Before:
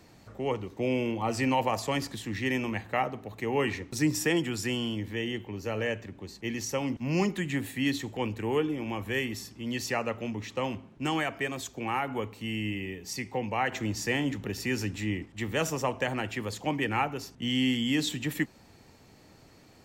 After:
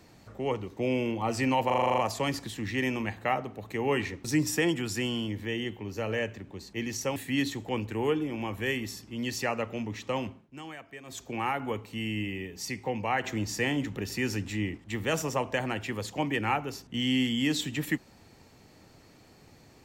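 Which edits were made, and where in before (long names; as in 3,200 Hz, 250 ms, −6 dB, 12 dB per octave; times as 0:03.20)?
0:01.66: stutter 0.04 s, 9 plays
0:06.84–0:07.64: remove
0:10.78–0:11.71: duck −13.5 dB, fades 0.19 s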